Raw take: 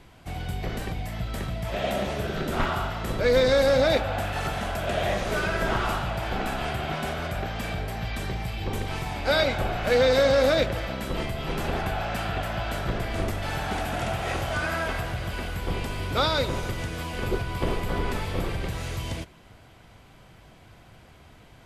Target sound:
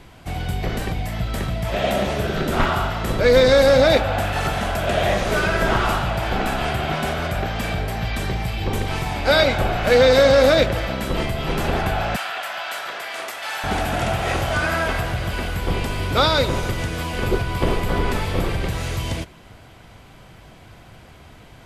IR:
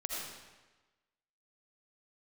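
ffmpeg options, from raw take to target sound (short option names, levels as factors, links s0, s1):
-filter_complex "[0:a]asettb=1/sr,asplit=3[s0][s1][s2];[s0]atrim=end=12.164[s3];[s1]atrim=start=12.16:end=13.64,asetpts=PTS-STARTPTS,afade=t=in:d=0.004:c=qsin,afade=t=out:st=1.476:d=0.004:c=qsin,highpass=940[s4];[s2]atrim=start=13.636[s5];[s3][s4]acrossfade=d=0.004:c1=hsin:c2=qsin[s6];[s6][s5]acrossfade=d=0.004:c1=qsin:c2=hsin,volume=2.11"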